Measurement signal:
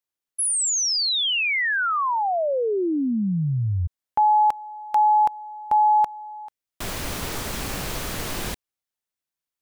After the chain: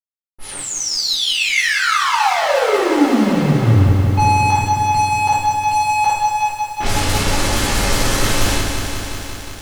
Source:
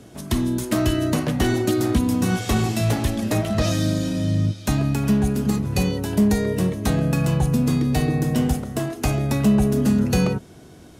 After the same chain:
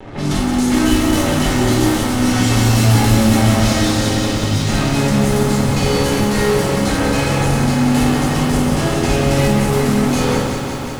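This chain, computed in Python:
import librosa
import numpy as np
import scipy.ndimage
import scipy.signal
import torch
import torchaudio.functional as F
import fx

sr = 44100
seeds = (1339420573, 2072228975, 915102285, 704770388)

y = scipy.ndimage.median_filter(x, 3, mode='constant')
y = fx.high_shelf(y, sr, hz=5300.0, db=7.5)
y = fx.room_flutter(y, sr, wall_m=9.0, rt60_s=0.35)
y = fx.dynamic_eq(y, sr, hz=110.0, q=0.71, threshold_db=-34.0, ratio=4.0, max_db=-7)
y = fx.fuzz(y, sr, gain_db=46.0, gate_db=-40.0)
y = fx.room_shoebox(y, sr, seeds[0], volume_m3=330.0, walls='furnished', distance_m=4.1)
y = fx.env_lowpass(y, sr, base_hz=1700.0, full_db=0.0)
y = fx.echo_crushed(y, sr, ms=181, feedback_pct=80, bits=5, wet_db=-6.5)
y = y * librosa.db_to_amplitude(-11.0)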